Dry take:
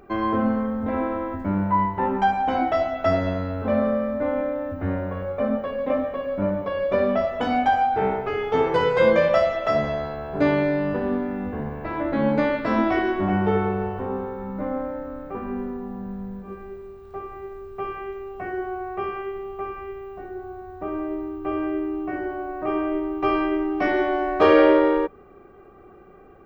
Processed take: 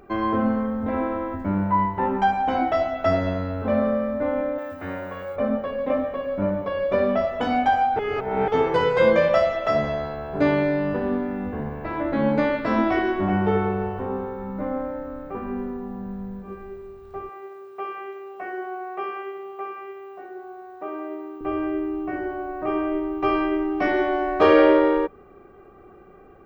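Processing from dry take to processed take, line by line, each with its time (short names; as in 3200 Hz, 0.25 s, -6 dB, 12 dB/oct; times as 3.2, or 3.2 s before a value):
4.58–5.36 tilt +3.5 dB/oct
7.99–8.48 reverse
17.29–21.41 HPF 400 Hz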